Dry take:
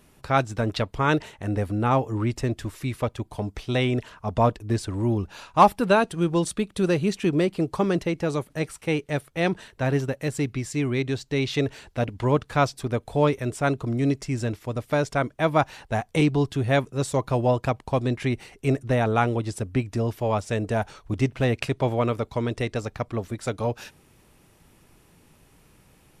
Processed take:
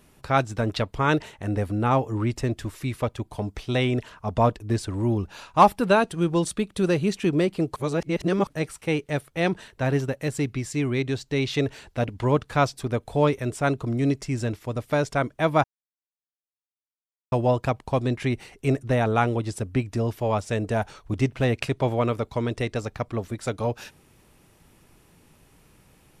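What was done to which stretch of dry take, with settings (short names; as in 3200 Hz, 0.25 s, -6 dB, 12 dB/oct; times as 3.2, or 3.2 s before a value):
7.76–8.47 reverse
15.64–17.32 mute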